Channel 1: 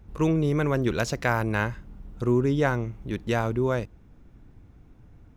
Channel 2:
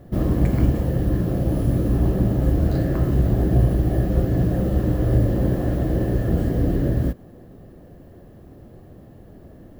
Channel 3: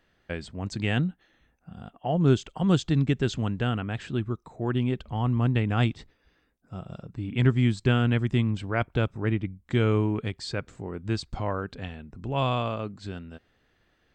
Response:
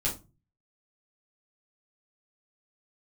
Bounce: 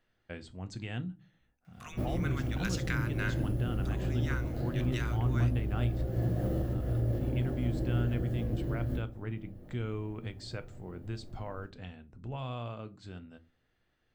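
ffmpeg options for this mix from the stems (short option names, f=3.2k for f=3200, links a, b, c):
-filter_complex "[0:a]acompressor=threshold=-31dB:ratio=2.5,highpass=f=1.3k:w=0.5412,highpass=f=1.3k:w=1.3066,adelay=1650,volume=-1.5dB,asplit=2[a][b];[b]volume=-15.5dB[c];[1:a]alimiter=limit=-14.5dB:level=0:latency=1:release=163,acrossover=split=230[d][e];[d]acompressor=threshold=-26dB:ratio=6[f];[f][e]amix=inputs=2:normalize=0,adelay=1850,volume=-11dB,asplit=2[g][h];[h]volume=-8.5dB[i];[2:a]alimiter=limit=-19.5dB:level=0:latency=1:release=264,volume=-11dB,asplit=3[j][k][l];[k]volume=-14.5dB[m];[l]apad=whole_len=513445[n];[g][n]sidechaincompress=threshold=-50dB:ratio=8:attack=16:release=312[o];[3:a]atrim=start_sample=2205[p];[c][i][m]amix=inputs=3:normalize=0[q];[q][p]afir=irnorm=-1:irlink=0[r];[a][o][j][r]amix=inputs=4:normalize=0"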